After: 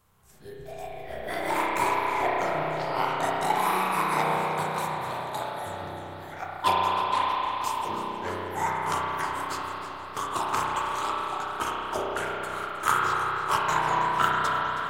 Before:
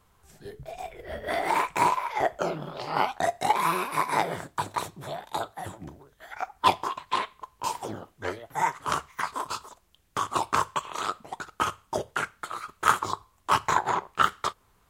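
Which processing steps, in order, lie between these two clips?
treble shelf 8.9 kHz +8.5 dB; spring tank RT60 3.8 s, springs 32 ms, chirp 25 ms, DRR -4.5 dB; modulated delay 317 ms, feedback 66%, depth 135 cents, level -14 dB; trim -4.5 dB

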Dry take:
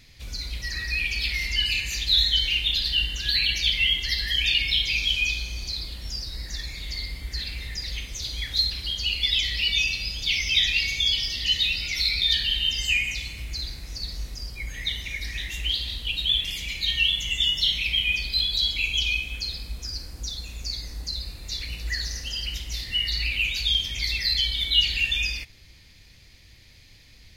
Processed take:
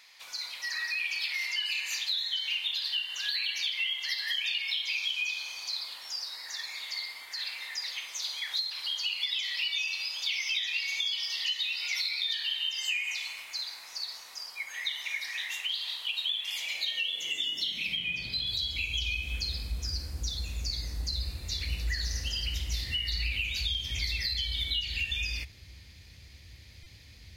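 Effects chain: 17.96–18.47 s: low-pass 3.8 kHz 6 dB/octave; compression 10:1, threshold -27 dBFS, peak gain reduction 13 dB; high-pass sweep 960 Hz -> 68 Hz, 16.48–18.80 s; buffer glitch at 26.83 s, samples 128, times 10; trim -1.5 dB

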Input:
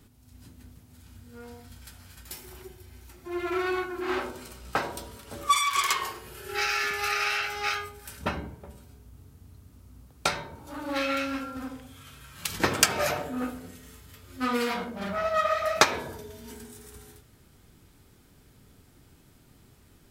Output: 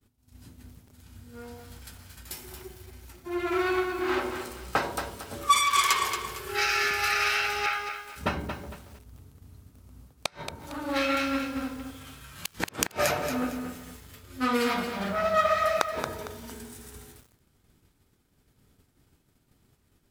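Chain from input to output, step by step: inverted gate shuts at -10 dBFS, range -32 dB; 7.66–8.16 s: three-band isolator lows -22 dB, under 450 Hz, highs -15 dB, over 3 kHz; expander -48 dBFS; bit-crushed delay 228 ms, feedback 35%, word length 8-bit, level -7.5 dB; trim +1.5 dB

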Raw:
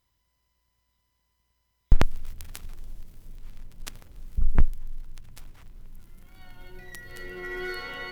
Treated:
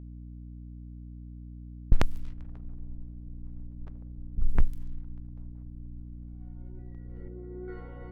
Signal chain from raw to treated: 7.28–7.68 s: band-pass filter 240 Hz, Q 0.52; level-controlled noise filter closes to 390 Hz, open at -16 dBFS; hum 60 Hz, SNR 14 dB; trim -4 dB

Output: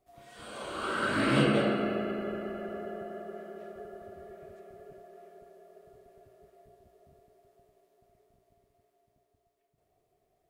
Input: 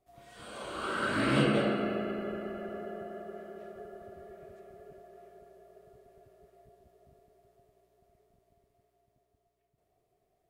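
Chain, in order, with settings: hum notches 60/120/180 Hz; trim +1.5 dB

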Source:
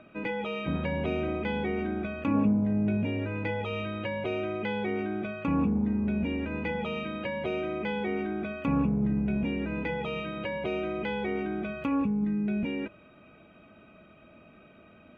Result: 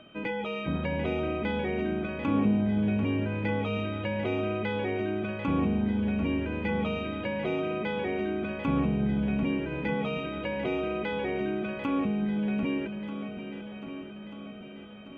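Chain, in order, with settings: shuffle delay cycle 1237 ms, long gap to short 1.5:1, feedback 47%, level -10 dB; whistle 3.1 kHz -57 dBFS

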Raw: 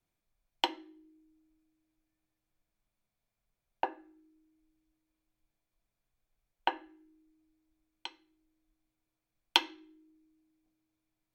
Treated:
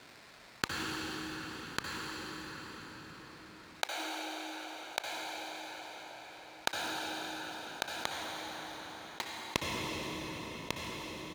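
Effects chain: sample-rate reducer 3.1 kHz, jitter 20%; frequency weighting D; delay 1147 ms -9.5 dB; inverted gate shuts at -20 dBFS, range -34 dB; high-pass 55 Hz; peaking EQ 1.1 kHz +3.5 dB 1 oct; band-stop 1.2 kHz, Q 17; reverberation RT60 3.9 s, pre-delay 56 ms, DRR 4.5 dB; level flattener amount 50%; trim +2 dB

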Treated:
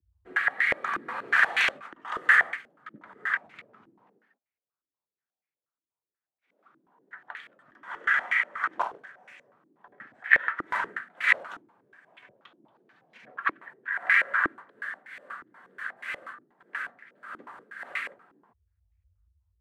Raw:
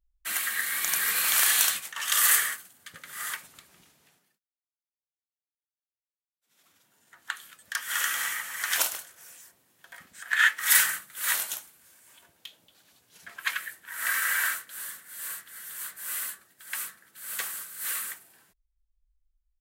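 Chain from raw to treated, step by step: frequency shift +46 Hz; step-sequenced low-pass 8.3 Hz 320–2200 Hz; trim +1.5 dB

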